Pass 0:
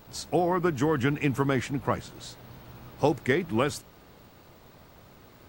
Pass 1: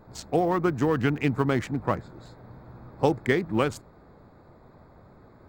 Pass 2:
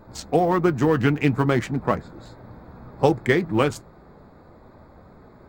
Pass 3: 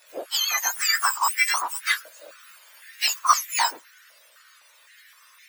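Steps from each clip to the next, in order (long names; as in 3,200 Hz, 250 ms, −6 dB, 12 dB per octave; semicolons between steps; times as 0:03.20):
adaptive Wiener filter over 15 samples; level +1.5 dB
flanger 0.42 Hz, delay 3.2 ms, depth 3.4 ms, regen −64%; level +8.5 dB
frequency axis turned over on the octave scale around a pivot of 1,500 Hz; high-pass on a step sequencer 3.9 Hz 670–2,100 Hz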